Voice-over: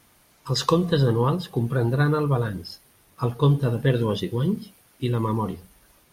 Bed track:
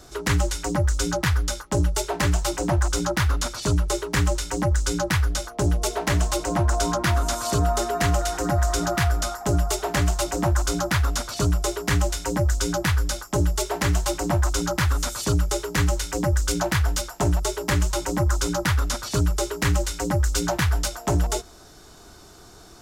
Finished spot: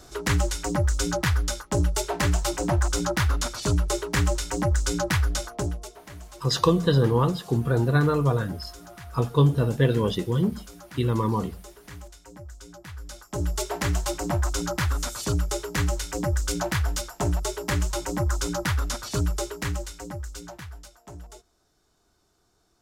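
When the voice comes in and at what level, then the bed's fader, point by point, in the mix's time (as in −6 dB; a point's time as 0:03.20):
5.95 s, 0.0 dB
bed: 0:05.54 −1.5 dB
0:05.99 −21 dB
0:12.83 −21 dB
0:13.53 −3.5 dB
0:19.33 −3.5 dB
0:20.86 −21 dB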